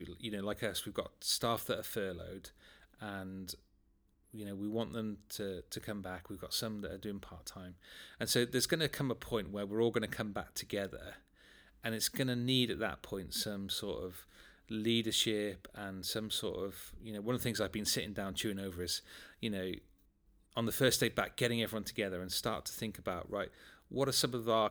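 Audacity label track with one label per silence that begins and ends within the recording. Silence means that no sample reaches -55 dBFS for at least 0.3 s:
3.590000	4.330000	silence
19.860000	20.510000	silence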